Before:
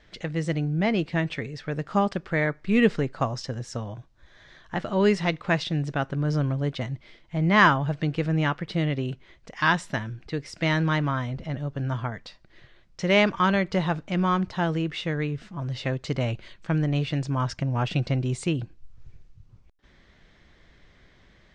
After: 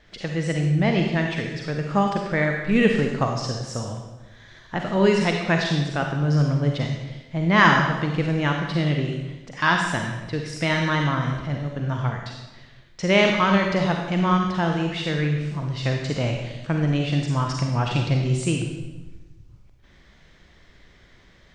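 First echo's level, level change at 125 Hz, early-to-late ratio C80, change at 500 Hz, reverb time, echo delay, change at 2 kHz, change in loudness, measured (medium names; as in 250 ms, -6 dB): no echo, +3.5 dB, 5.5 dB, +3.0 dB, 1.2 s, no echo, +3.5 dB, +3.5 dB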